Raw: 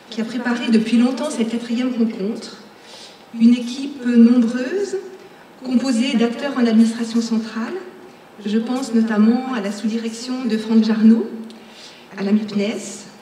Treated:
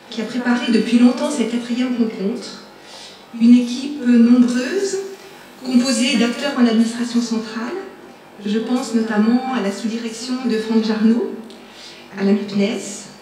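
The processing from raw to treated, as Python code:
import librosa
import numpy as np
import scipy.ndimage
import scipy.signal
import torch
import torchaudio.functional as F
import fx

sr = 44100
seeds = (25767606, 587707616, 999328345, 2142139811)

y = fx.high_shelf(x, sr, hz=3000.0, db=8.0, at=(4.48, 6.51))
y = fx.room_flutter(y, sr, wall_m=3.5, rt60_s=0.3)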